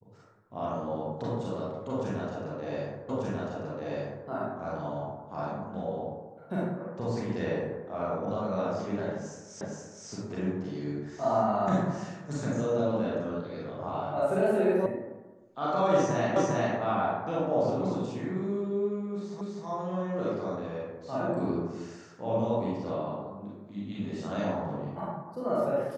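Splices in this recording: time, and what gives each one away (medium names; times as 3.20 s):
3.09 s: repeat of the last 1.19 s
9.61 s: repeat of the last 0.47 s
14.86 s: sound stops dead
16.36 s: repeat of the last 0.4 s
19.41 s: repeat of the last 0.25 s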